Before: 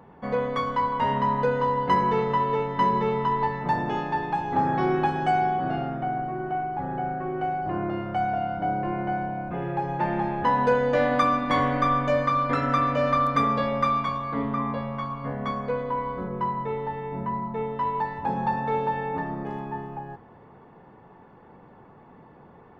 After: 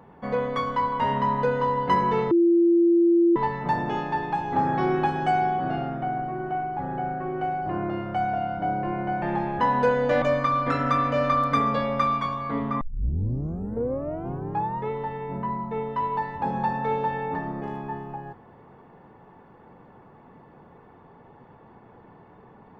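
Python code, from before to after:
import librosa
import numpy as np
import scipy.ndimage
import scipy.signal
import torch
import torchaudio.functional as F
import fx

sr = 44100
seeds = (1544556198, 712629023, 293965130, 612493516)

y = fx.edit(x, sr, fx.bleep(start_s=2.31, length_s=1.05, hz=341.0, db=-15.0),
    fx.cut(start_s=9.22, length_s=0.84),
    fx.cut(start_s=11.06, length_s=0.99),
    fx.tape_start(start_s=14.64, length_s=2.09), tone=tone)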